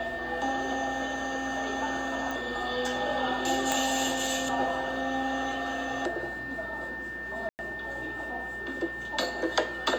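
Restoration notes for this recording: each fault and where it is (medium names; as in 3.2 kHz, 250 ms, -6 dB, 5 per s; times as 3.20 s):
whine 1.8 kHz -35 dBFS
2.31 s: pop
3.72 s: pop
7.49–7.59 s: dropout 99 ms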